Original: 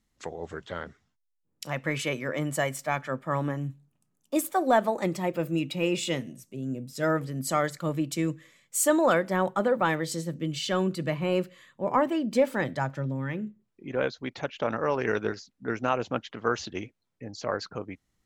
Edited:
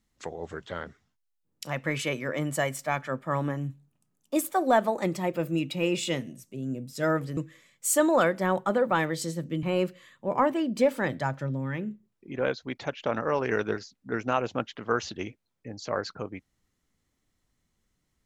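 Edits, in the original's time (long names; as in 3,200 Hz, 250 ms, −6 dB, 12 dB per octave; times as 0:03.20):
0:07.37–0:08.27: remove
0:10.53–0:11.19: remove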